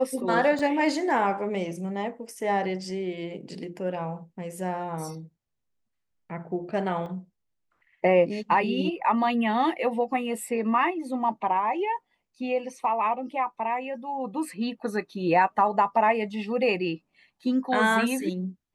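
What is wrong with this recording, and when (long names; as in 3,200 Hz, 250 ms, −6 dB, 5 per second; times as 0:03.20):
0:00.59: drop-out 3.1 ms
0:07.06: drop-out 2.2 ms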